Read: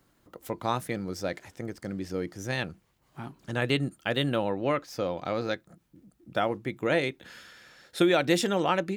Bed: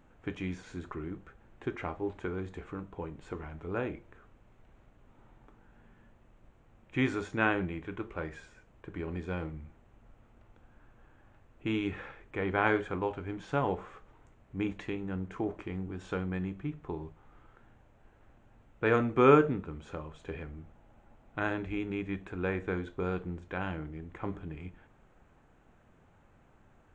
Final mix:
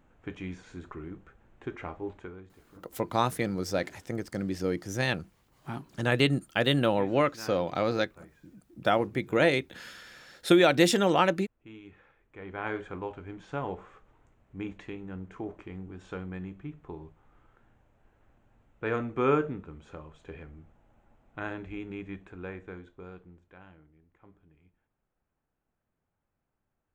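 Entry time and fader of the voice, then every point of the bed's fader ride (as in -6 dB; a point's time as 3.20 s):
2.50 s, +2.5 dB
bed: 2.13 s -2 dB
2.56 s -16.5 dB
12.05 s -16.5 dB
12.86 s -4 dB
22.08 s -4 dB
24.02 s -21 dB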